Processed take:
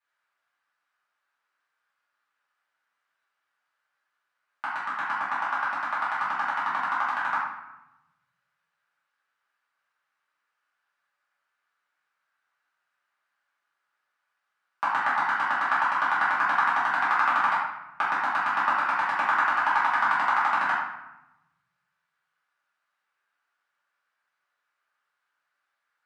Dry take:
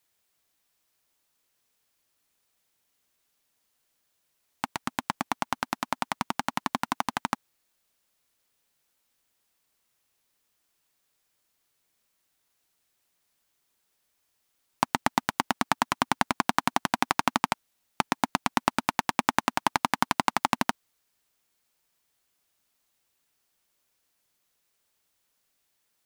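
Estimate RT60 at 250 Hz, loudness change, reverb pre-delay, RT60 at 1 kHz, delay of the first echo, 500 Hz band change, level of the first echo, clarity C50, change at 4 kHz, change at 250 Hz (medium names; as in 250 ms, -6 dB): 1.5 s, +3.5 dB, 3 ms, 0.95 s, no echo, -4.5 dB, no echo, 1.0 dB, -7.5 dB, -14.0 dB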